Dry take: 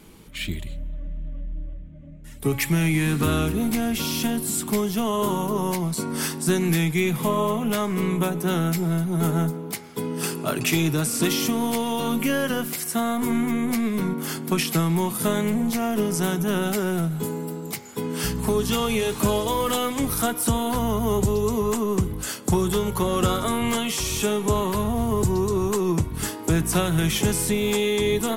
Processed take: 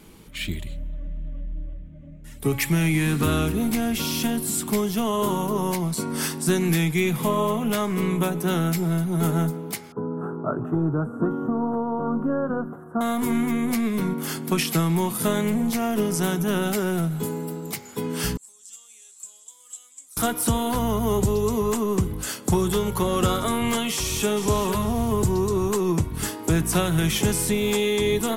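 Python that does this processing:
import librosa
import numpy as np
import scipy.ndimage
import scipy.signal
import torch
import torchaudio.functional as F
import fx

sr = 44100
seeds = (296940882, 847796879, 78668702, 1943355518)

y = fx.ellip_lowpass(x, sr, hz=1400.0, order=4, stop_db=40, at=(9.92, 13.01))
y = fx.bandpass_q(y, sr, hz=7600.0, q=10.0, at=(18.37, 20.17))
y = fx.echo_throw(y, sr, start_s=23.91, length_s=0.56, ms=450, feedback_pct=30, wet_db=-9.5)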